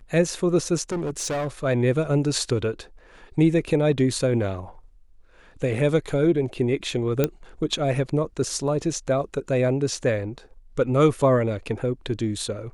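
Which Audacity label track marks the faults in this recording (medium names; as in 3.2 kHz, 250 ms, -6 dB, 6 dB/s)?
0.900000	1.480000	clipped -23.5 dBFS
7.240000	7.240000	pop -7 dBFS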